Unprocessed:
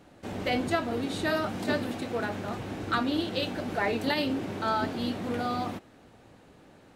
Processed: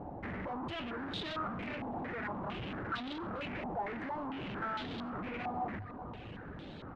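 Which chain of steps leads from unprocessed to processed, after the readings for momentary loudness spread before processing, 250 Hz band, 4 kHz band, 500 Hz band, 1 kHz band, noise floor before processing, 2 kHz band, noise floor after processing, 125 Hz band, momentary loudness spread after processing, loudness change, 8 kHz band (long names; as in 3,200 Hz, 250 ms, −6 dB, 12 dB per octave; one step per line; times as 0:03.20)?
7 LU, −10.0 dB, −10.0 dB, −11.5 dB, −6.5 dB, −56 dBFS, −8.5 dB, −47 dBFS, −7.0 dB, 8 LU, −9.5 dB, below −20 dB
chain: low-shelf EQ 340 Hz +9.5 dB
mains-hum notches 50/100 Hz
on a send: repeating echo 198 ms, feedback 52%, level −21.5 dB
on the sum: brickwall limiter −19.5 dBFS, peak gain reduction 8 dB
downward compressor, threshold −30 dBFS, peak gain reduction 7 dB
reverb reduction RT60 0.53 s
tube saturation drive 47 dB, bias 0.4
parametric band 62 Hz +3 dB 2 octaves
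low-pass on a step sequencer 4.4 Hz 840–3,600 Hz
level +6 dB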